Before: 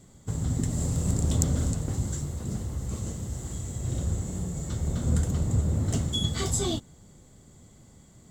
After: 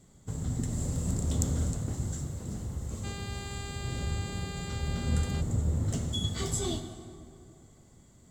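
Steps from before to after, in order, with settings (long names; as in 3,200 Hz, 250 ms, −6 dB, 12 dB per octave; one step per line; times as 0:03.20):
dense smooth reverb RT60 2.5 s, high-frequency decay 0.55×, DRR 6.5 dB
0:03.03–0:05.40: hum with harmonics 400 Hz, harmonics 12, −39 dBFS −2 dB per octave
level −5 dB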